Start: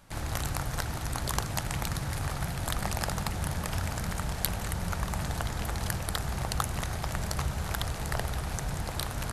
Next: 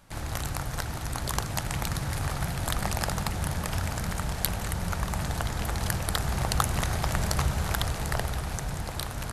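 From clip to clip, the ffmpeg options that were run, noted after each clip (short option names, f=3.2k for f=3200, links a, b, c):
-af "dynaudnorm=f=280:g=13:m=6.5dB"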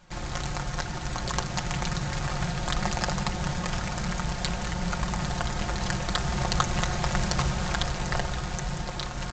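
-af "aecho=1:1:5.6:0.65,aresample=16000,acrusher=bits=3:mode=log:mix=0:aa=0.000001,aresample=44100"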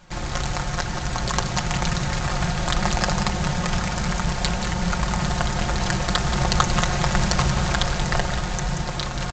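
-af "aecho=1:1:181:0.335,volume=5.5dB"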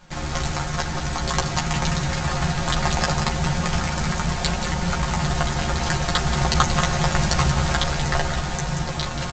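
-filter_complex "[0:a]asplit=2[a][b];[b]adelay=13,volume=-3dB[c];[a][c]amix=inputs=2:normalize=0,volume=-1dB"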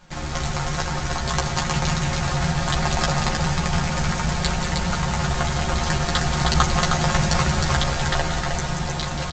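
-af "aecho=1:1:312:0.631,volume=-1dB"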